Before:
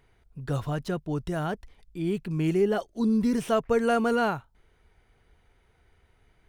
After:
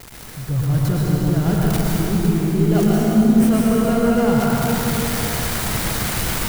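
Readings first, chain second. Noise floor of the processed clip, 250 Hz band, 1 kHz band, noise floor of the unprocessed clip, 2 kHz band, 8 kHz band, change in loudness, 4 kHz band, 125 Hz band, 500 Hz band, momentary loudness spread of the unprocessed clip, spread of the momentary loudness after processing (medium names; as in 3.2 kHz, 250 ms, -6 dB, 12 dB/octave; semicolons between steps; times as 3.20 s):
-36 dBFS, +11.5 dB, +6.5 dB, -65 dBFS, +8.5 dB, +21.5 dB, +9.0 dB, +14.5 dB, +15.0 dB, +5.5 dB, 10 LU, 6 LU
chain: zero-crossing glitches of -20.5 dBFS; level rider gain up to 14 dB; in parallel at -7.5 dB: sample-rate reducer 3.5 kHz; on the sum: tone controls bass +13 dB, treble -3 dB; reverse; compression, threshold -15 dBFS, peak gain reduction 15.5 dB; reverse; plate-style reverb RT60 4.2 s, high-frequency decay 0.7×, pre-delay 95 ms, DRR -5.5 dB; trim -6 dB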